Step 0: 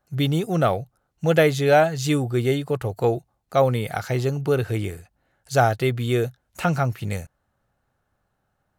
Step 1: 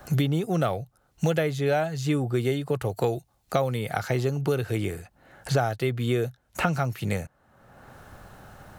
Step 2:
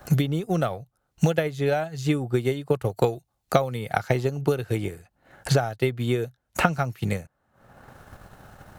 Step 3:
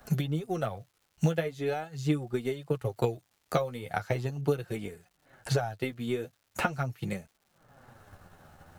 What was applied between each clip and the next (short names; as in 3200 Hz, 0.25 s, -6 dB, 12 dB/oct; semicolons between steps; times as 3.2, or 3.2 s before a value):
three-band squash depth 100%; gain -4.5 dB
transient shaper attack +7 dB, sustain -7 dB; gain -1 dB
flange 0.41 Hz, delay 4.1 ms, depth 9.1 ms, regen +19%; crackle 380/s -53 dBFS; gain -3.5 dB